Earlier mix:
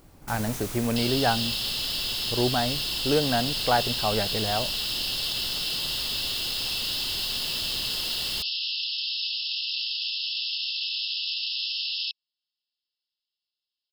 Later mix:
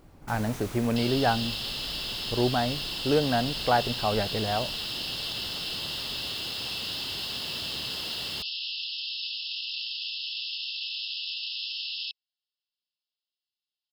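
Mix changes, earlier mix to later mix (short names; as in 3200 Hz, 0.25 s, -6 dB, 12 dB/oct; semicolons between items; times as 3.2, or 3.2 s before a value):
first sound: add HPF 75 Hz; master: add high shelf 4400 Hz -10 dB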